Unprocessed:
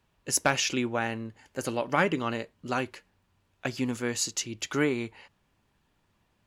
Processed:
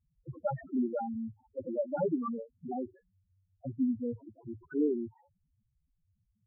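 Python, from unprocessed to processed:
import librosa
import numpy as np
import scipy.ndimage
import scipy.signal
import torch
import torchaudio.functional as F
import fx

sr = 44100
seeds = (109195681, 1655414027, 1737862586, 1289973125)

y = scipy.ndimage.median_filter(x, 15, mode='constant')
y = fx.env_lowpass(y, sr, base_hz=1000.0, full_db=-23.0)
y = fx.spec_topn(y, sr, count=2)
y = y * 10.0 ** (2.5 / 20.0)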